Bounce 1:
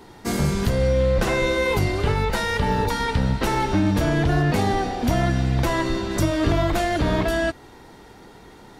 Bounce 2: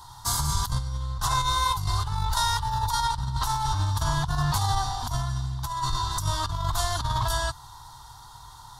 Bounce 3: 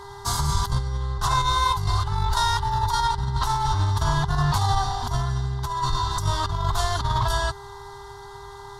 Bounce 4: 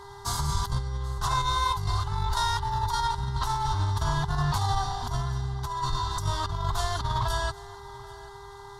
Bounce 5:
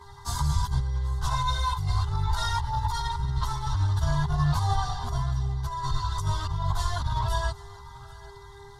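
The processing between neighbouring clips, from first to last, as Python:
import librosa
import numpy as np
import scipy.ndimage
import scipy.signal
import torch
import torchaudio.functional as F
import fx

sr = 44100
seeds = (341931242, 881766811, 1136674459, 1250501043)

y1 = fx.curve_eq(x, sr, hz=(130.0, 190.0, 510.0, 1000.0, 2400.0, 3500.0, 5700.0, 11000.0, 15000.0), db=(0, -23, -27, 7, -21, 2, 4, 6, 3))
y1 = fx.over_compress(y1, sr, threshold_db=-25.0, ratio=-0.5)
y2 = fx.dmg_buzz(y1, sr, base_hz=400.0, harmonics=5, level_db=-47.0, tilt_db=-5, odd_only=False)
y2 = fx.high_shelf(y2, sr, hz=7200.0, db=-11.0)
y2 = y2 * librosa.db_to_amplitude(3.5)
y3 = y2 + 10.0 ** (-20.5 / 20.0) * np.pad(y2, (int(785 * sr / 1000.0), 0))[:len(y2)]
y3 = y3 * librosa.db_to_amplitude(-4.5)
y4 = fx.chorus_voices(y3, sr, voices=6, hz=0.85, base_ms=13, depth_ms=1.1, mix_pct=60)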